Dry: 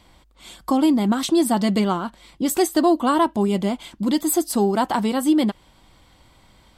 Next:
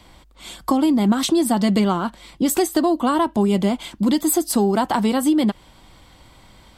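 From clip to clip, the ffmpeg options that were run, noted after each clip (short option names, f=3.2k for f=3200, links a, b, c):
-filter_complex "[0:a]acrossover=split=160[a][b];[b]acompressor=threshold=-21dB:ratio=4[c];[a][c]amix=inputs=2:normalize=0,volume=5dB"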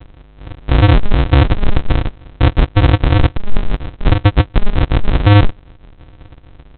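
-af "aresample=8000,acrusher=samples=39:mix=1:aa=0.000001,aresample=44100,alimiter=level_in=11dB:limit=-1dB:release=50:level=0:latency=1,volume=-1dB"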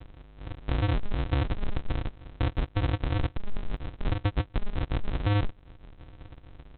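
-af "acompressor=threshold=-20dB:ratio=2.5,volume=-8dB"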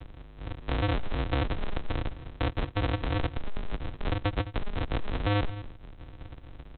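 -filter_complex "[0:a]aecho=1:1:211:0.15,acrossover=split=340|670[a][b][c];[a]asoftclip=type=tanh:threshold=-28dB[d];[d][b][c]amix=inputs=3:normalize=0,volume=2.5dB"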